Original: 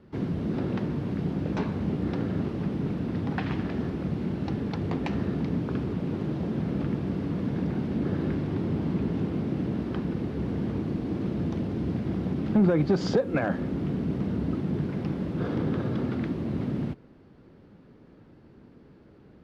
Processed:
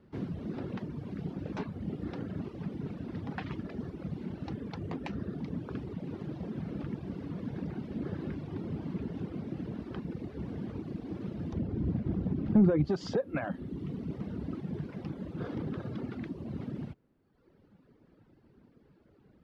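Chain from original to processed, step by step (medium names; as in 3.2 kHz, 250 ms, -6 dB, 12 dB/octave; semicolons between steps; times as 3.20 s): reverb removal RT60 1.3 s; 11.53–12.85 s: tilt EQ -2.5 dB/octave; trim -6 dB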